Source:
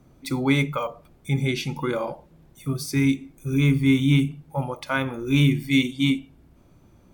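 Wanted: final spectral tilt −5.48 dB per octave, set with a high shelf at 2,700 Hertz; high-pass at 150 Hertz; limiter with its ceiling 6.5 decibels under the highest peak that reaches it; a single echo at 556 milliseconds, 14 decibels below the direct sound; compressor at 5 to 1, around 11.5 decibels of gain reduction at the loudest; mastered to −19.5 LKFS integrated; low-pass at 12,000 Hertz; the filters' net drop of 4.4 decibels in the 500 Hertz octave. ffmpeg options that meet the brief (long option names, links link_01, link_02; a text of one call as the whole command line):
ffmpeg -i in.wav -af "highpass=150,lowpass=12000,equalizer=frequency=500:width_type=o:gain=-5.5,highshelf=frequency=2700:gain=-6,acompressor=threshold=-30dB:ratio=5,alimiter=level_in=1.5dB:limit=-24dB:level=0:latency=1,volume=-1.5dB,aecho=1:1:556:0.2,volume=17dB" out.wav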